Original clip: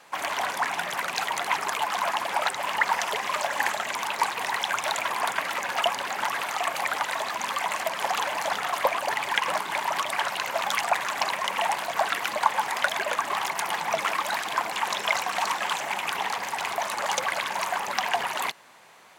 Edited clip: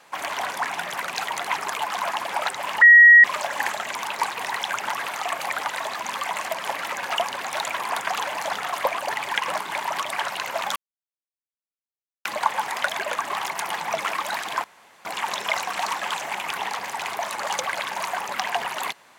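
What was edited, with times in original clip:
2.82–3.24 s: bleep 1.9 kHz -6.5 dBFS
4.79–5.40 s: swap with 6.14–8.09 s
10.76–12.25 s: mute
14.64 s: insert room tone 0.41 s

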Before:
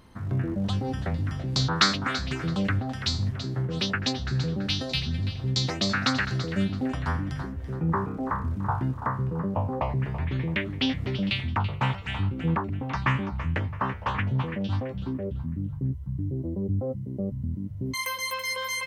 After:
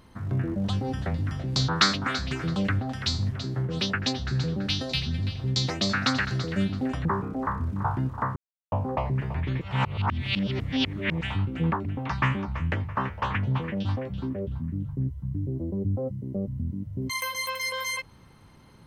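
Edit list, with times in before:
7.05–7.89 s: delete
9.20–9.56 s: mute
10.45–12.05 s: reverse

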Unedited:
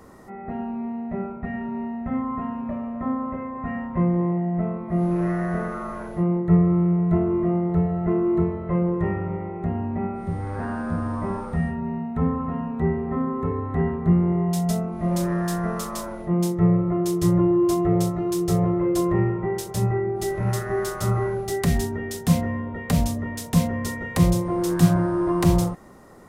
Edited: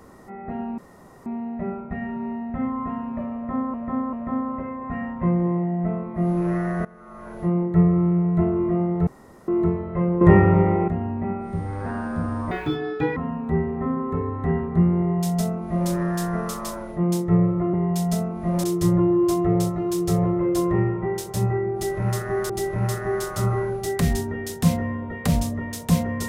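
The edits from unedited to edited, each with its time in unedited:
0.78 s: insert room tone 0.48 s
2.87–3.26 s: loop, 3 plays
5.59–6.17 s: fade in quadratic, from -19.5 dB
7.81–8.22 s: room tone
8.95–9.62 s: gain +11.5 dB
11.25–12.47 s: speed 186%
14.31–15.21 s: copy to 17.04 s
20.14–20.90 s: loop, 2 plays

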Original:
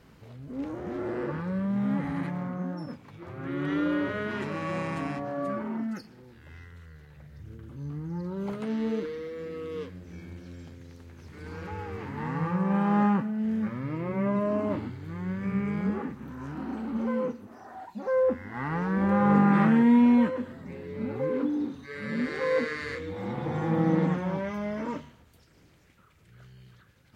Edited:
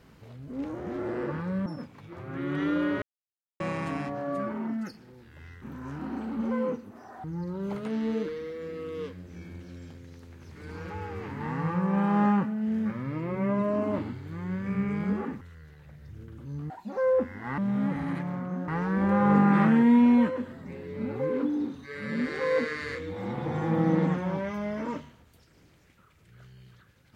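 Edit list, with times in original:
1.66–2.76 s: move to 18.68 s
4.12–4.70 s: mute
6.72–8.01 s: swap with 16.18–17.80 s

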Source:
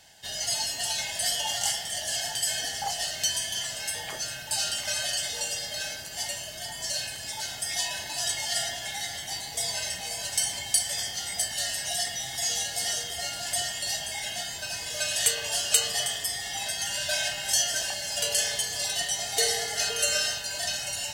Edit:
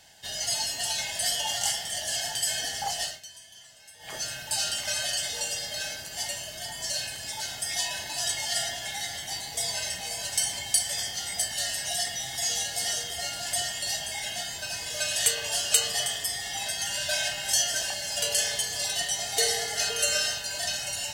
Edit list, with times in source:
3.03–4.17 s: dip -18.5 dB, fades 0.18 s

